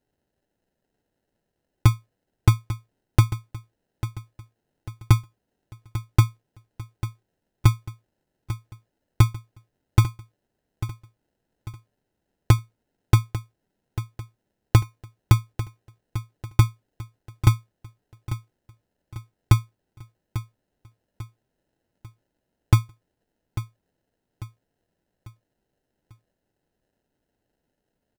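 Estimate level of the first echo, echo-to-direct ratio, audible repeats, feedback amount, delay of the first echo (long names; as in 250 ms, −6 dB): −13.0 dB, −12.0 dB, 3, 42%, 845 ms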